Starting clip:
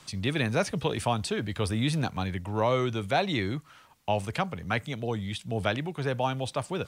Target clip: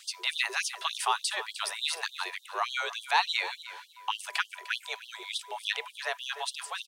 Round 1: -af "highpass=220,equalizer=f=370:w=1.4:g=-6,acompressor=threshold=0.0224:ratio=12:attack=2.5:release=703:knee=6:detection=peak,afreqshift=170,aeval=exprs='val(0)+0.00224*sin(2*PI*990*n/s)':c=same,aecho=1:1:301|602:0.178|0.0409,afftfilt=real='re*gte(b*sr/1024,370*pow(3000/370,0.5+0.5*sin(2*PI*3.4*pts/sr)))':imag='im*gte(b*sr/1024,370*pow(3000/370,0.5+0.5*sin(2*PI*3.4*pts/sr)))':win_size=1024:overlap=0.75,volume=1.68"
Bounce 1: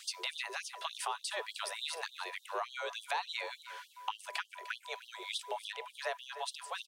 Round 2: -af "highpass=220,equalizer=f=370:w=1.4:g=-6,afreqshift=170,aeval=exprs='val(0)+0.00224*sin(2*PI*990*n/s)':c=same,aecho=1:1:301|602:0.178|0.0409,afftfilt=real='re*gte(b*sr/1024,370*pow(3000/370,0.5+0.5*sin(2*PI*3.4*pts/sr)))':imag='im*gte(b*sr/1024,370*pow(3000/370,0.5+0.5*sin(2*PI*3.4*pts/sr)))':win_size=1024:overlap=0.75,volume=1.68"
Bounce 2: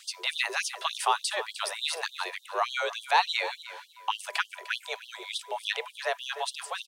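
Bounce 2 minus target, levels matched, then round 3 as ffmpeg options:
500 Hz band +6.0 dB
-af "highpass=220,equalizer=f=370:w=1.4:g=-17,afreqshift=170,aeval=exprs='val(0)+0.00224*sin(2*PI*990*n/s)':c=same,aecho=1:1:301|602:0.178|0.0409,afftfilt=real='re*gte(b*sr/1024,370*pow(3000/370,0.5+0.5*sin(2*PI*3.4*pts/sr)))':imag='im*gte(b*sr/1024,370*pow(3000/370,0.5+0.5*sin(2*PI*3.4*pts/sr)))':win_size=1024:overlap=0.75,volume=1.68"

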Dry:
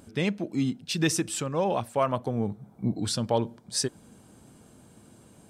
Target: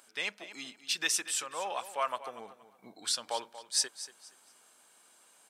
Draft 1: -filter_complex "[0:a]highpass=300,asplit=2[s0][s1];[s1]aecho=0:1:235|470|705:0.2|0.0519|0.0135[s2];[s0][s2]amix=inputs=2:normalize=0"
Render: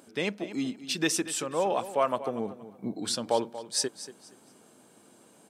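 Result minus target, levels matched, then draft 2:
250 Hz band +16.5 dB
-filter_complex "[0:a]highpass=1100,asplit=2[s0][s1];[s1]aecho=0:1:235|470|705:0.2|0.0519|0.0135[s2];[s0][s2]amix=inputs=2:normalize=0"

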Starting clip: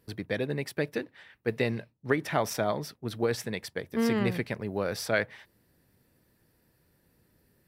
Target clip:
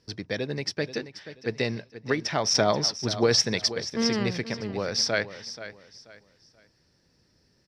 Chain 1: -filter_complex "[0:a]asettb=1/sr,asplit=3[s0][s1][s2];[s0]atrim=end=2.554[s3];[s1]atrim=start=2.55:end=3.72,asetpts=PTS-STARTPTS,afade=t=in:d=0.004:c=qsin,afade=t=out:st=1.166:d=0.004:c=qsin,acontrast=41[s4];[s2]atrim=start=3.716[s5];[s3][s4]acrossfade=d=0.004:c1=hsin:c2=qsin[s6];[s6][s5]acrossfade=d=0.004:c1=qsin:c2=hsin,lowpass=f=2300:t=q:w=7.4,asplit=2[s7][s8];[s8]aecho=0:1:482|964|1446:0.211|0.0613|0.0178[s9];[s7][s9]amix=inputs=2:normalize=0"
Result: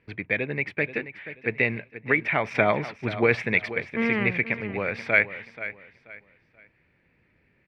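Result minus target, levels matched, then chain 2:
4 kHz band -17.0 dB
-filter_complex "[0:a]asettb=1/sr,asplit=3[s0][s1][s2];[s0]atrim=end=2.554[s3];[s1]atrim=start=2.55:end=3.72,asetpts=PTS-STARTPTS,afade=t=in:d=0.004:c=qsin,afade=t=out:st=1.166:d=0.004:c=qsin,acontrast=41[s4];[s2]atrim=start=3.716[s5];[s3][s4]acrossfade=d=0.004:c1=hsin:c2=qsin[s6];[s6][s5]acrossfade=d=0.004:c1=qsin:c2=hsin,lowpass=f=5400:t=q:w=7.4,asplit=2[s7][s8];[s8]aecho=0:1:482|964|1446:0.211|0.0613|0.0178[s9];[s7][s9]amix=inputs=2:normalize=0"

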